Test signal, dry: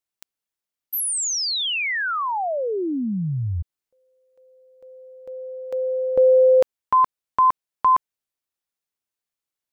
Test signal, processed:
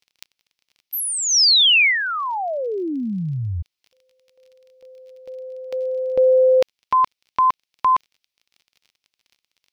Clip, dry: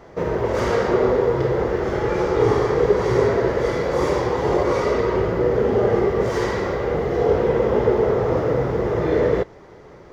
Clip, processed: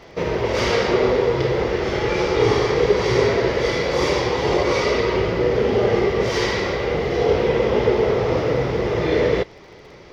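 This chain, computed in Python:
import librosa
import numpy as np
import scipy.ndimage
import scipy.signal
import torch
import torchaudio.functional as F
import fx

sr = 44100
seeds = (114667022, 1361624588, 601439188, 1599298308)

y = fx.dmg_crackle(x, sr, seeds[0], per_s=29.0, level_db=-47.0)
y = fx.band_shelf(y, sr, hz=3500.0, db=10.5, octaves=1.7)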